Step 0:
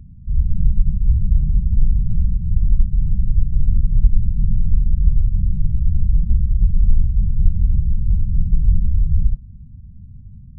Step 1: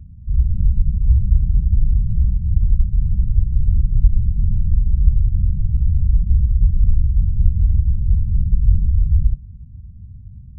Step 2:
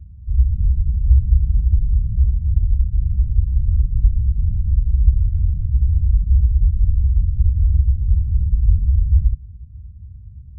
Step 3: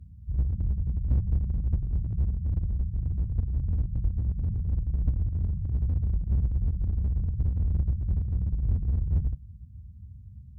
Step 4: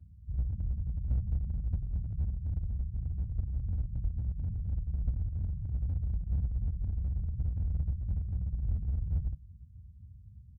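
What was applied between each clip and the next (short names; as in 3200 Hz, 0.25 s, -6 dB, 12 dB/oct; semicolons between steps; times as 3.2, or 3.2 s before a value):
bell 72 Hz +9 dB 2.2 oct; de-hum 153 Hz, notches 7; gain -5.5 dB
bell 65 Hz +11.5 dB 1.6 oct; gain -9 dB
HPF 220 Hz 6 dB/oct; one-sided clip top -27 dBFS, bottom -16.5 dBFS; gain +2 dB
comb 1.4 ms, depth 33%; shaped vibrato saw down 4.1 Hz, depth 160 cents; gain -8 dB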